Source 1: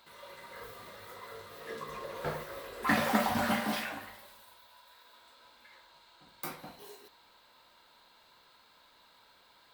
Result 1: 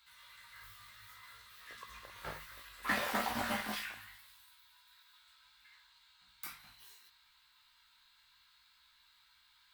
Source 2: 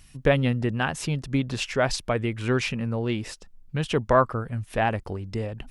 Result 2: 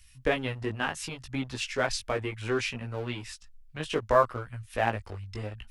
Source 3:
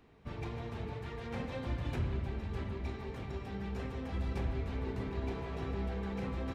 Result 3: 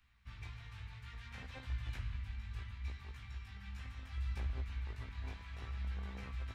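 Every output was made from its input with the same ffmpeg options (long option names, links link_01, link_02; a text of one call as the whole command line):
ffmpeg -i in.wav -filter_complex "[0:a]equalizer=frequency=150:width_type=o:width=0.77:gain=-10,flanger=delay=15.5:depth=3.9:speed=0.66,acrossover=split=160|1200[link_01][link_02][link_03];[link_02]aeval=exprs='sgn(val(0))*max(abs(val(0))-0.00794,0)':channel_layout=same[link_04];[link_01][link_04][link_03]amix=inputs=3:normalize=0" out.wav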